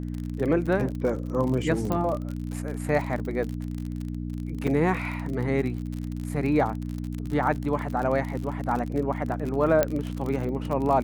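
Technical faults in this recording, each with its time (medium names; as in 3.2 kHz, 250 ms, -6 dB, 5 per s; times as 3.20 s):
crackle 44 per s -30 dBFS
hum 60 Hz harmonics 5 -32 dBFS
1.92 s: pop -14 dBFS
4.67–4.68 s: dropout 5.5 ms
9.83 s: pop -8 dBFS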